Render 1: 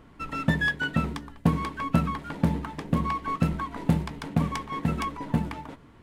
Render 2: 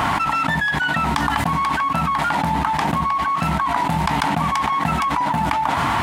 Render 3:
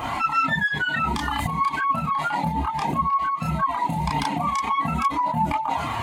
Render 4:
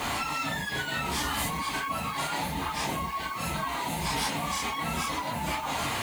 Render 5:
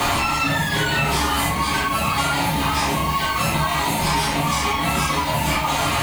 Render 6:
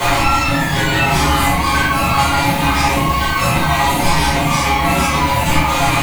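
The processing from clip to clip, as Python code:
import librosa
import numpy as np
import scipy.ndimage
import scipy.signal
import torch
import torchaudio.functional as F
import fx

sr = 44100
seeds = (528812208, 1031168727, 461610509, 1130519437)

y1 = scipy.signal.sosfilt(scipy.signal.butter(2, 73.0, 'highpass', fs=sr, output='sos'), x)
y1 = fx.low_shelf_res(y1, sr, hz=610.0, db=-9.0, q=3.0)
y1 = fx.env_flatten(y1, sr, amount_pct=100)
y1 = F.gain(torch.from_numpy(y1), 2.0).numpy()
y2 = fx.bin_expand(y1, sr, power=2.0)
y2 = fx.chorus_voices(y2, sr, voices=2, hz=0.36, base_ms=30, depth_ms=4.9, mix_pct=50)
y2 = F.gain(torch.from_numpy(y2), 3.5).numpy()
y3 = fx.phase_scramble(y2, sr, seeds[0], window_ms=100)
y3 = fx.quant_dither(y3, sr, seeds[1], bits=10, dither='triangular')
y3 = fx.spectral_comp(y3, sr, ratio=2.0)
y3 = F.gain(torch.from_numpy(y3), -7.0).numpy()
y4 = fx.room_shoebox(y3, sr, seeds[2], volume_m3=53.0, walls='mixed', distance_m=0.87)
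y4 = fx.band_squash(y4, sr, depth_pct=100)
y4 = F.gain(torch.from_numpy(y4), 5.0).numpy()
y5 = fx.room_shoebox(y4, sr, seeds[3], volume_m3=290.0, walls='furnished', distance_m=4.8)
y5 = F.gain(torch.from_numpy(y5), -3.0).numpy()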